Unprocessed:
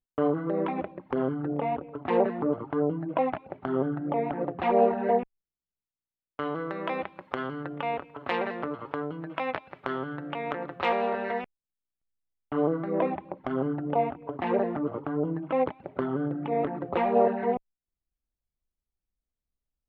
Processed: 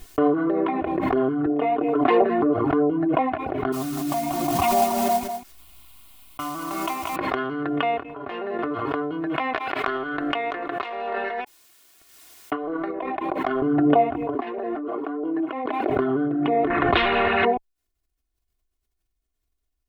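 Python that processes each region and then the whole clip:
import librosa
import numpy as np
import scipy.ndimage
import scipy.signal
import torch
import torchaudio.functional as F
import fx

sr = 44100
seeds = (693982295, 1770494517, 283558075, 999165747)

y = fx.chain(x, sr, fx.highpass(hz=220.0, slope=12),
    fx.comb(ms=6.7, depth=0.34), at=(1.46, 2.22))
y = fx.chain(y, sr, fx.fixed_phaser(hz=1700.0, stages=6),
    fx.mod_noise(seeds[0], snr_db=12),
    fx.echo_single(ms=196, db=-9.0), at=(3.72, 7.16))
y = fx.chain(y, sr, fx.high_shelf(hz=2200.0, db=-11.0),
    fx.comb_fb(f0_hz=200.0, decay_s=0.27, harmonics='all', damping=0.0, mix_pct=80), at=(8.03, 8.59))
y = fx.chain(y, sr, fx.highpass(hz=590.0, slope=6),
    fx.over_compress(threshold_db=-35.0, ratio=-1.0),
    fx.transient(attack_db=5, sustain_db=-7), at=(9.55, 13.62))
y = fx.chain(y, sr, fx.highpass(hz=250.0, slope=24),
    fx.over_compress(threshold_db=-37.0, ratio=-1.0), at=(14.35, 15.9))
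y = fx.chain(y, sr, fx.lowpass(hz=3000.0, slope=12),
    fx.spectral_comp(ratio=4.0), at=(16.7, 17.45))
y = fx.notch(y, sr, hz=850.0, q=12.0)
y = y + 0.65 * np.pad(y, (int(2.8 * sr / 1000.0), 0))[:len(y)]
y = fx.pre_swell(y, sr, db_per_s=21.0)
y = y * librosa.db_to_amplitude(3.5)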